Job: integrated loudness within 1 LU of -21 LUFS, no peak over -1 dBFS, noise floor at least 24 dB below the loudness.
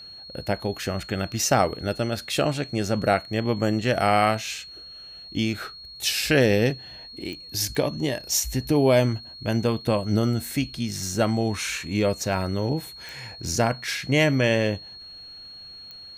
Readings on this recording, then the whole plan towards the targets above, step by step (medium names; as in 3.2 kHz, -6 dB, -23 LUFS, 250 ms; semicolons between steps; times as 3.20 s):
clicks found 4; steady tone 4.3 kHz; tone level -40 dBFS; loudness -24.5 LUFS; peak level -6.0 dBFS; loudness target -21.0 LUFS
-> de-click; band-stop 4.3 kHz, Q 30; trim +3.5 dB